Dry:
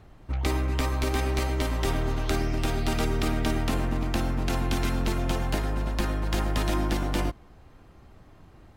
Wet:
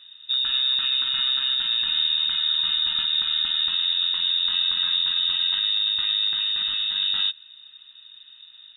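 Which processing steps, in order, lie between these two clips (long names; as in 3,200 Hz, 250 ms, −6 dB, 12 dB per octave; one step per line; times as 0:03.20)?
brickwall limiter −18.5 dBFS, peak gain reduction 5.5 dB
0:06.30–0:06.96: hard clipping −25.5 dBFS, distortion −21 dB
phaser with its sweep stopped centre 2,100 Hz, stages 8
voice inversion scrambler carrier 3,700 Hz
level +3 dB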